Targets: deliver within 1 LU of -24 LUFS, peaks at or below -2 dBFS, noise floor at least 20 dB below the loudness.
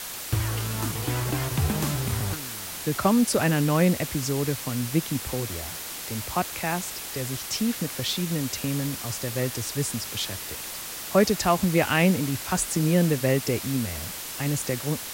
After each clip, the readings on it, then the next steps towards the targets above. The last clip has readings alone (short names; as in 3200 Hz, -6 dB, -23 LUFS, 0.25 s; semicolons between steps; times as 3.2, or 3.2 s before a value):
noise floor -36 dBFS; noise floor target -46 dBFS; loudness -26.0 LUFS; peak -9.5 dBFS; loudness target -24.0 LUFS
-> noise print and reduce 10 dB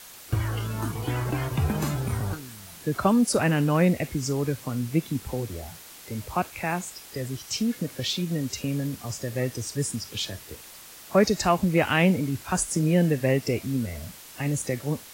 noise floor -46 dBFS; noise floor target -47 dBFS
-> noise print and reduce 6 dB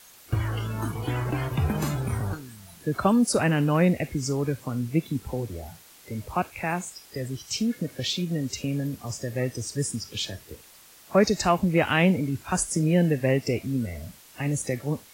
noise floor -52 dBFS; loudness -26.5 LUFS; peak -9.5 dBFS; loudness target -24.0 LUFS
-> gain +2.5 dB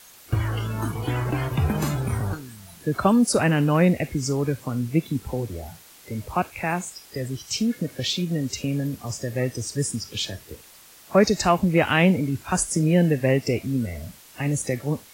loudness -24.0 LUFS; peak -7.0 dBFS; noise floor -49 dBFS